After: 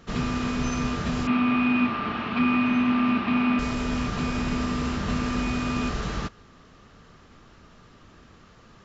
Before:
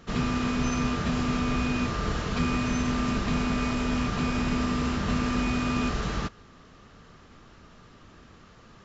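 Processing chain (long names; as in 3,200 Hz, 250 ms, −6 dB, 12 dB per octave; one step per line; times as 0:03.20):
0:01.27–0:03.59: loudspeaker in its box 150–3,600 Hz, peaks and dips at 160 Hz −7 dB, 240 Hz +9 dB, 480 Hz −7 dB, 820 Hz +5 dB, 1,200 Hz +5 dB, 2,500 Hz +8 dB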